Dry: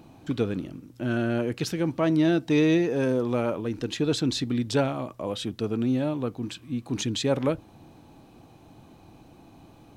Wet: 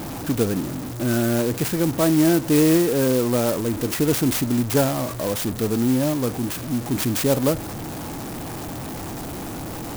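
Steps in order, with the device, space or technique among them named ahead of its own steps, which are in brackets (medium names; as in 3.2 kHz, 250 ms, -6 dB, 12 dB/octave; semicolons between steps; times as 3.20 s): early CD player with a faulty converter (jump at every zero crossing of -30 dBFS; sampling jitter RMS 0.087 ms); trim +3.5 dB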